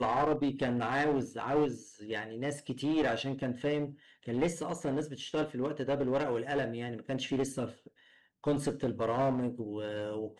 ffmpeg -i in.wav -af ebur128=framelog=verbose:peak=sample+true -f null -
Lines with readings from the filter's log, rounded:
Integrated loudness:
  I:         -33.4 LUFS
  Threshold: -43.7 LUFS
Loudness range:
  LRA:         1.8 LU
  Threshold: -54.1 LUFS
  LRA low:   -34.7 LUFS
  LRA high:  -32.8 LUFS
Sample peak:
  Peak:      -16.3 dBFS
True peak:
  Peak:      -16.3 dBFS